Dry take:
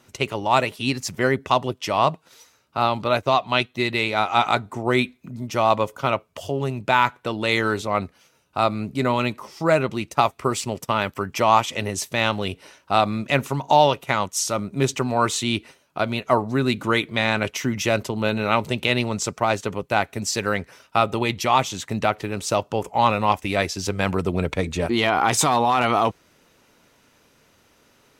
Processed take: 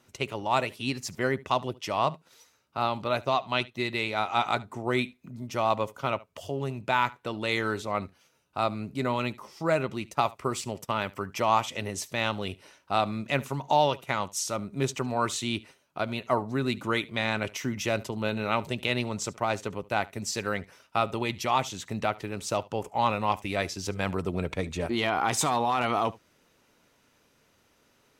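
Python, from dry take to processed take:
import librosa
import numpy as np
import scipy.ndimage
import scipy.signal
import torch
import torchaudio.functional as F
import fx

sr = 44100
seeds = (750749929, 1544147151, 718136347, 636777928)

p1 = x + fx.echo_single(x, sr, ms=73, db=-22.0, dry=0)
y = p1 * librosa.db_to_amplitude(-7.0)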